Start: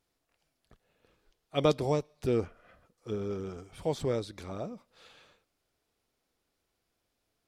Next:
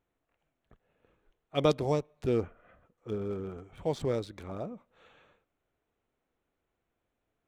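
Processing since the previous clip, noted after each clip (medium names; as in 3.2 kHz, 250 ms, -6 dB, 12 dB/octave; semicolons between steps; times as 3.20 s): local Wiener filter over 9 samples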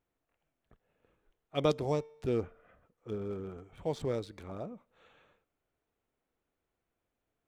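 feedback comb 450 Hz, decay 0.72 s, mix 30%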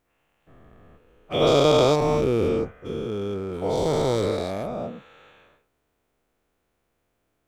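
every event in the spectrogram widened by 480 ms; trim +5 dB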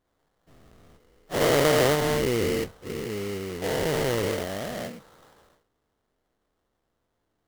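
sample-rate reducer 2.5 kHz, jitter 20%; trim -3 dB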